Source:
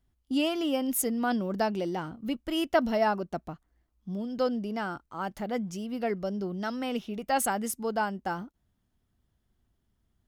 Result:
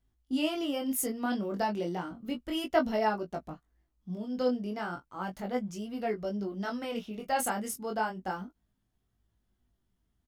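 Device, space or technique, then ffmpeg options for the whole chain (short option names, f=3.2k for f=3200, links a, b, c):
double-tracked vocal: -filter_complex "[0:a]asplit=2[a][b];[b]adelay=16,volume=-10.5dB[c];[a][c]amix=inputs=2:normalize=0,flanger=delay=18.5:depth=5.6:speed=0.33"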